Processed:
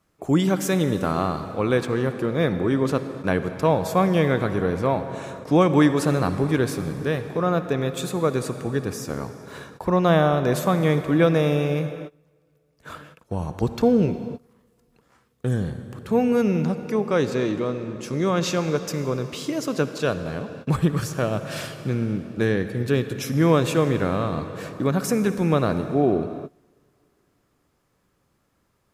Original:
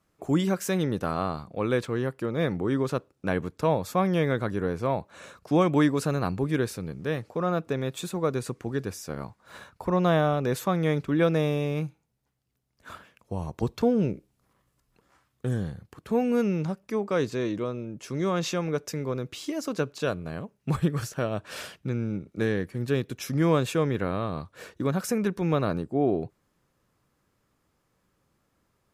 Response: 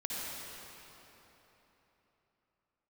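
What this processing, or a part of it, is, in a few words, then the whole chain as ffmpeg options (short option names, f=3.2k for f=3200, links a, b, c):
keyed gated reverb: -filter_complex "[0:a]asplit=3[a][b][c];[1:a]atrim=start_sample=2205[d];[b][d]afir=irnorm=-1:irlink=0[e];[c]apad=whole_len=1275857[f];[e][f]sidechaingate=range=-25dB:threshold=-57dB:ratio=16:detection=peak,volume=-11dB[g];[a][g]amix=inputs=2:normalize=0,volume=3dB"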